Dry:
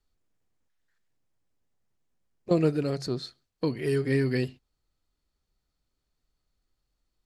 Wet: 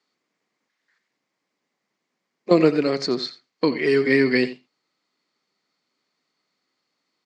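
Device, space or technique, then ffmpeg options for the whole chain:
television speaker: -filter_complex "[0:a]asettb=1/sr,asplit=3[a][b][c];[a]atrim=end=2.764[d];[b]atrim=start=2.76:end=3.98,asetpts=PTS-STARTPTS,afade=t=in:d=0.004:c=qsin,afade=t=out:st=1.216:d=0.004:c=qsin,lowpass=f=9k:w=0.5412,lowpass=f=9k:w=1.3066[e];[c]atrim=start=3.976[f];[d][e]acrossfade=d=0.004:c1=hsin:c2=qsin[g];[g][f]acrossfade=d=0.004:c1=qsin:c2=hsin,highpass=f=200:w=0.5412,highpass=f=200:w=1.3066,equalizer=f=1.1k:t=q:w=4:g=5,equalizer=f=2.1k:t=q:w=4:g=9,equalizer=f=4.6k:t=q:w=4:g=4,lowpass=f=6.9k:w=0.5412,lowpass=f=6.9k:w=1.3066,asplit=2[h][i];[i]adelay=87.46,volume=-15dB,highshelf=f=4k:g=-1.97[j];[h][j]amix=inputs=2:normalize=0,volume=8dB"

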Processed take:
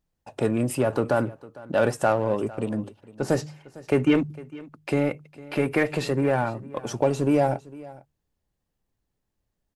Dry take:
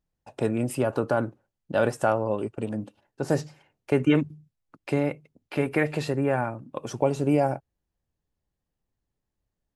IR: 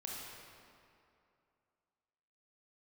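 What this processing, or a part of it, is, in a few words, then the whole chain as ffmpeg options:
parallel distortion: -filter_complex "[0:a]asplit=2[a][b];[b]asoftclip=type=hard:threshold=-26.5dB,volume=-6dB[c];[a][c]amix=inputs=2:normalize=0,bandreject=f=50:t=h:w=6,bandreject=f=100:t=h:w=6,bandreject=f=150:t=h:w=6,aecho=1:1:454:0.1"

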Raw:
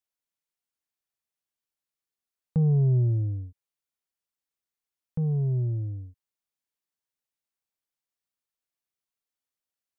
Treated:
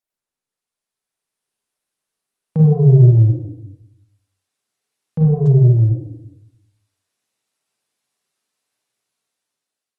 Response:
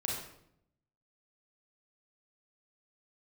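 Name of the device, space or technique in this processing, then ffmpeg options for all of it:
far-field microphone of a smart speaker: -filter_complex "[0:a]asplit=3[a][b][c];[a]afade=t=out:st=5.61:d=0.02[d];[b]bandreject=f=50:t=h:w=6,bandreject=f=100:t=h:w=6,bandreject=f=150:t=h:w=6,bandreject=f=200:t=h:w=6,bandreject=f=250:t=h:w=6,bandreject=f=300:t=h:w=6,bandreject=f=350:t=h:w=6,bandreject=f=400:t=h:w=6,bandreject=f=450:t=h:w=6,afade=t=in:st=5.61:d=0.02,afade=t=out:st=6.03:d=0.02[e];[c]afade=t=in:st=6.03:d=0.02[f];[d][e][f]amix=inputs=3:normalize=0[g];[1:a]atrim=start_sample=2205[h];[g][h]afir=irnorm=-1:irlink=0,highpass=160,dynaudnorm=f=490:g=5:m=12.5dB" -ar 48000 -c:a libopus -b:a 32k

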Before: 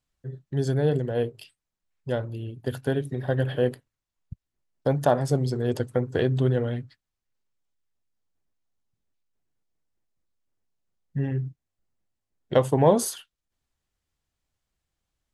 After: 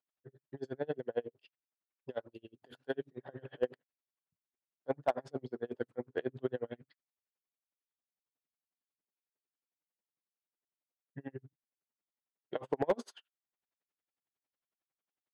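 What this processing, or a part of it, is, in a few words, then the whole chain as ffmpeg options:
helicopter radio: -filter_complex "[0:a]highpass=300,lowpass=2.8k,aeval=exprs='val(0)*pow(10,-36*(0.5-0.5*cos(2*PI*11*n/s))/20)':c=same,asoftclip=type=hard:threshold=-17dB,asettb=1/sr,asplit=3[a][b][c];[a]atrim=end=2.144[d];[b]atrim=start=2.14:end=2.95,asetpts=PTS-STARTPTS,afade=t=in:d=0.004:c=qsin,afade=t=out:st=0.806:d=0.004:c=qsin,bass=f=250:g=-3,treble=f=4k:g=12[e];[c]atrim=start=2.946[f];[d][e]acrossfade=d=0.004:c1=hsin:c2=qsin[g];[g][f]acrossfade=d=0.004:c1=qsin:c2=hsin,volume=-3.5dB"

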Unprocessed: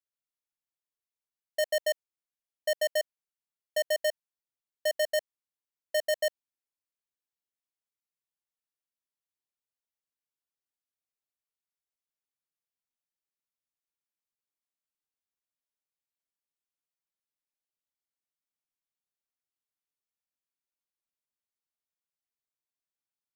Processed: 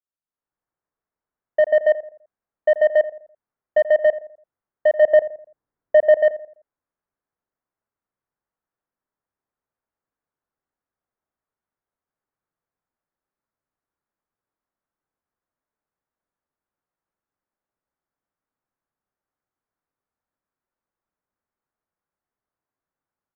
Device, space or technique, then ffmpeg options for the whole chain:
action camera in a waterproof case: -filter_complex "[0:a]asplit=3[a][b][c];[a]afade=t=out:st=5.01:d=0.02[d];[b]lowshelf=f=480:g=8,afade=t=in:st=5.01:d=0.02,afade=t=out:st=6.2:d=0.02[e];[c]afade=t=in:st=6.2:d=0.02[f];[d][e][f]amix=inputs=3:normalize=0,lowpass=f=1.6k:w=0.5412,lowpass=f=1.6k:w=1.3066,asplit=2[g][h];[h]adelay=84,lowpass=f=1.2k:p=1,volume=-14dB,asplit=2[i][j];[j]adelay=84,lowpass=f=1.2k:p=1,volume=0.43,asplit=2[k][l];[l]adelay=84,lowpass=f=1.2k:p=1,volume=0.43,asplit=2[m][n];[n]adelay=84,lowpass=f=1.2k:p=1,volume=0.43[o];[g][i][k][m][o]amix=inputs=5:normalize=0,dynaudnorm=f=120:g=7:m=13dB" -ar 44100 -c:a aac -b:a 128k

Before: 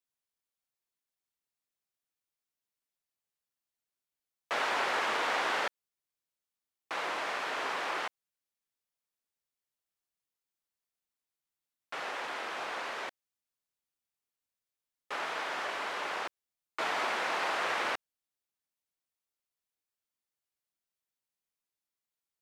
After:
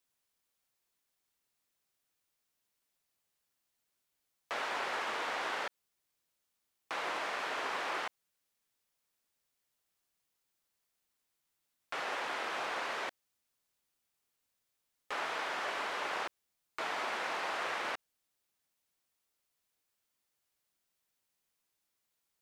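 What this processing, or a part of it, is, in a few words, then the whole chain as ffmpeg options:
de-esser from a sidechain: -filter_complex "[0:a]asplit=2[a][b];[b]highpass=5.5k,apad=whole_len=988579[c];[a][c]sidechaincompress=threshold=-57dB:ratio=8:attack=0.58:release=34,volume=8dB"

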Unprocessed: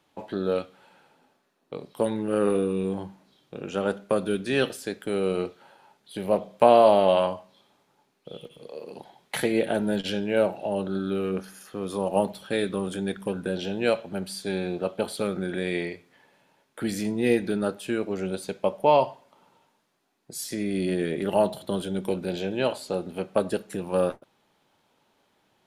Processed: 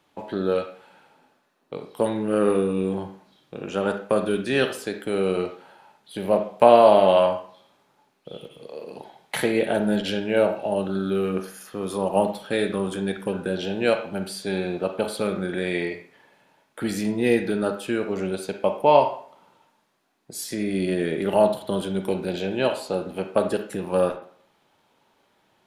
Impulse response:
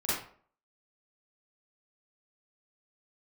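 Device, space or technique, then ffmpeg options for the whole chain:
filtered reverb send: -filter_complex "[0:a]asettb=1/sr,asplit=3[a][b][c];[a]atrim=end=10.664[d];[b]atrim=start=10.66:end=11.98,asetpts=PTS-STARTPTS,afade=t=in:d=0.004:c=qsin,afade=t=out:st=1.316:d=0.004:c=qsin,highshelf=f=8.1k:g=5.5[e];[c]atrim=start=11.976[f];[d][e]acrossfade=d=0.004:c1=hsin:c2=qsin[g];[g][f]acrossfade=d=0.004:c1=qsin:c2=hsin,asplit=2[h][i];[i]highpass=f=530:p=1,lowpass=3.8k[j];[1:a]atrim=start_sample=2205[k];[j][k]afir=irnorm=-1:irlink=0,volume=-12dB[l];[h][l]amix=inputs=2:normalize=0,volume=1.5dB"

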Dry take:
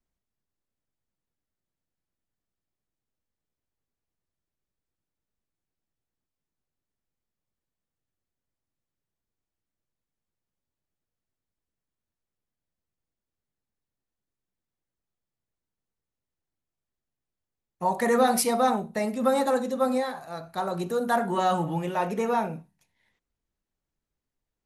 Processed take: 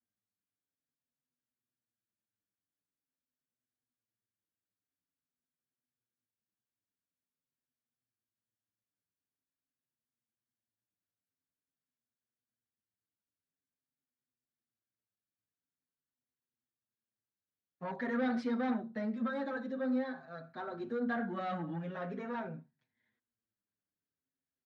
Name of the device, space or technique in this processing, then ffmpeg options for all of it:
barber-pole flanger into a guitar amplifier: -filter_complex "[0:a]asplit=2[a][b];[b]adelay=6.4,afreqshift=-0.47[c];[a][c]amix=inputs=2:normalize=1,asoftclip=type=tanh:threshold=-23dB,highpass=110,equalizer=f=110:t=q:w=4:g=9,equalizer=f=250:t=q:w=4:g=10,equalizer=f=870:t=q:w=4:g=-6,equalizer=f=1.6k:t=q:w=4:g=8,equalizer=f=2.7k:t=q:w=4:g=-7,lowpass=f=3.9k:w=0.5412,lowpass=f=3.9k:w=1.3066,volume=-8dB"

